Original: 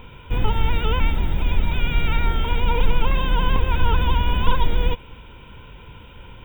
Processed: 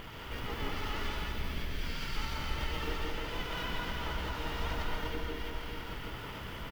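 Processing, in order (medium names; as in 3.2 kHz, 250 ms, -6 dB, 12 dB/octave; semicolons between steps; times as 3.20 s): comb filter that takes the minimum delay 0.62 ms; dynamic bell 5.1 kHz, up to +5 dB, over -49 dBFS, Q 1.3; echo whose repeats swap between lows and highs 163 ms, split 1.4 kHz, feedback 53%, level -5.5 dB; spectral selection erased 1.21–1.75 s, 770–1700 Hz; compression 4:1, threshold -32 dBFS, peak gain reduction 18.5 dB; hum notches 50/100/150/200/250/300/350/400 Hz; reverberation RT60 2.3 s, pre-delay 107 ms, DRR -2 dB; harmony voices -7 st -2 dB, -3 st -9 dB; bass shelf 130 Hz -11.5 dB; speed mistake 25 fps video run at 24 fps; trim -1 dB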